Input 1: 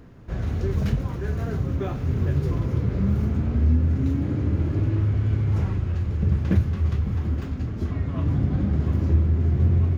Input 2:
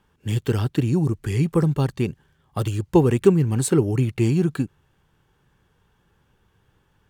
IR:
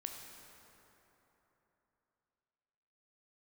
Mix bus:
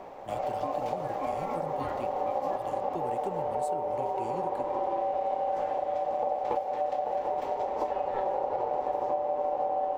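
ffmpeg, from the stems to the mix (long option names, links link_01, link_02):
-filter_complex "[0:a]aeval=exprs='val(0)*sin(2*PI*670*n/s)':channel_layout=same,volume=2.5dB,asplit=2[link_01][link_02];[link_02]volume=-5dB[link_03];[1:a]highpass=frequency=330:poles=1,volume=-15dB,asplit=2[link_04][link_05];[link_05]apad=whole_len=440022[link_06];[link_01][link_06]sidechaincompress=threshold=-53dB:ratio=8:attack=16:release=348[link_07];[2:a]atrim=start_sample=2205[link_08];[link_03][link_08]afir=irnorm=-1:irlink=0[link_09];[link_07][link_04][link_09]amix=inputs=3:normalize=0,acompressor=threshold=-27dB:ratio=6"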